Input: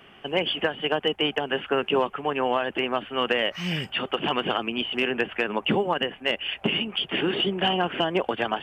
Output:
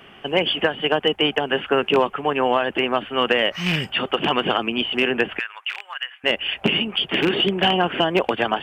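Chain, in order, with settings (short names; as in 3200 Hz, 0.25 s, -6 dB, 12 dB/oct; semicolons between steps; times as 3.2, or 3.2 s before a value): rattling part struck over -28 dBFS, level -17 dBFS; 5.39–6.24 ladder high-pass 1200 Hz, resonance 30%; gain +5 dB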